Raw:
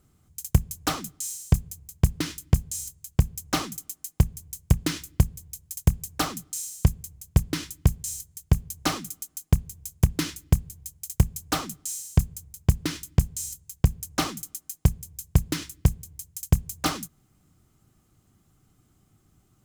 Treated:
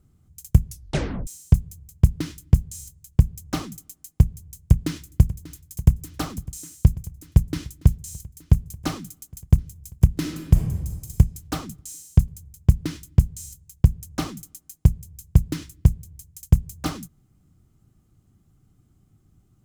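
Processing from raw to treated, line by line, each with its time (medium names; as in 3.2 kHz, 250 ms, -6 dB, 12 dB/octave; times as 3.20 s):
0.65 s: tape stop 0.62 s
4.35–5.49 s: echo throw 590 ms, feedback 80%, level -16.5 dB
10.12–11.14 s: reverb throw, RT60 1.3 s, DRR 2.5 dB
whole clip: bass shelf 340 Hz +11.5 dB; trim -6 dB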